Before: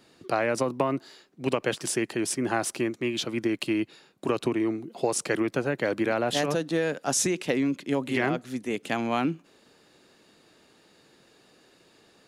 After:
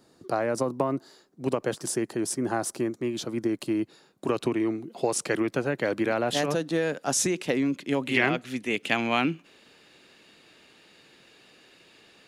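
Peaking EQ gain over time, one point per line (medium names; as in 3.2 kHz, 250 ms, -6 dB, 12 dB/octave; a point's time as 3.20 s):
peaking EQ 2.6 kHz 1.2 oct
3.78 s -10.5 dB
4.44 s -0.5 dB
7.70 s -0.5 dB
8.22 s +9 dB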